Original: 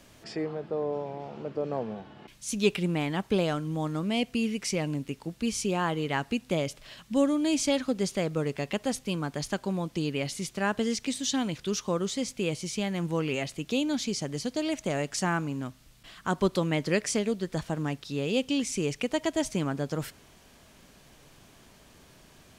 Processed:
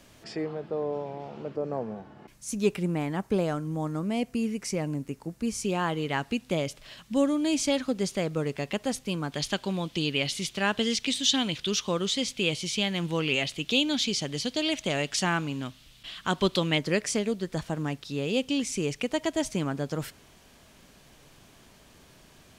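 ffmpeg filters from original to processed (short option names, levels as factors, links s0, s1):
-af "asetnsamples=n=441:p=0,asendcmd='1.56 equalizer g -9;5.64 equalizer g 1;9.32 equalizer g 11.5;16.78 equalizer g 1',equalizer=f=3300:t=o:w=1.1:g=0.5"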